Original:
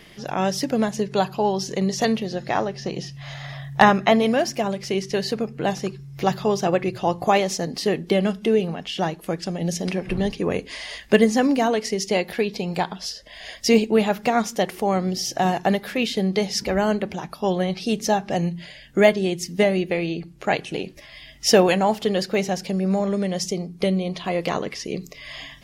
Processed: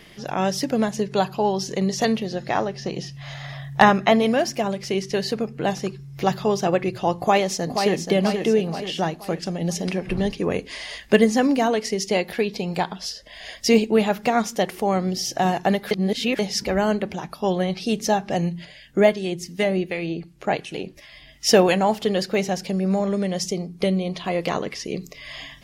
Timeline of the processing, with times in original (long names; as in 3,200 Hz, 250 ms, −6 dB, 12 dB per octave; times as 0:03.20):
0:07.17–0:08.07: delay throw 480 ms, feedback 50%, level −6 dB
0:15.91–0:16.39: reverse
0:18.65–0:21.49: two-band tremolo in antiphase 2.7 Hz, depth 50%, crossover 1,200 Hz